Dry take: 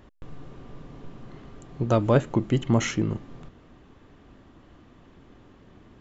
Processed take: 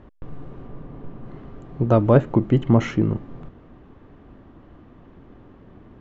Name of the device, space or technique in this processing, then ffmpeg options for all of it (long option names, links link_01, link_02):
through cloth: -filter_complex "[0:a]lowpass=6400,highshelf=frequency=2900:gain=-17.5,asettb=1/sr,asplit=3[link_01][link_02][link_03];[link_01]atrim=end=0.674[link_04];[link_02]atrim=start=0.67:end=1.26,asetpts=PTS-STARTPTS,afade=type=in:duration=0.004:curve=qsin,afade=type=out:start_time=0.586:duration=0.004:curve=qsin,highshelf=frequency=5900:gain=-11.5[link_05];[link_03]atrim=start=1.256[link_06];[link_04][link_05]acrossfade=duration=0.004:curve1=hsin:curve2=qsin[link_07];[link_07][link_06]acrossfade=duration=0.004:curve1=qsin:curve2=hsin,volume=5.5dB"